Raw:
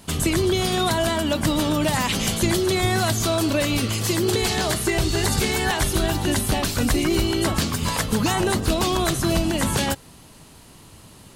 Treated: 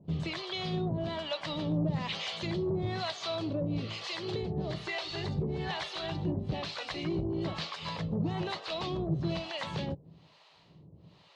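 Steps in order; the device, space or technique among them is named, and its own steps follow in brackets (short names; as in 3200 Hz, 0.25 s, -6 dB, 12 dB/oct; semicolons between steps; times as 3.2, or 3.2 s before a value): guitar amplifier with harmonic tremolo (harmonic tremolo 1.1 Hz, depth 100%, crossover 580 Hz; soft clip -18 dBFS, distortion -19 dB; speaker cabinet 81–4400 Hz, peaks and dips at 160 Hz +10 dB, 240 Hz -7 dB, 570 Hz +3 dB, 1500 Hz -6 dB, 4000 Hz +3 dB); gain -6.5 dB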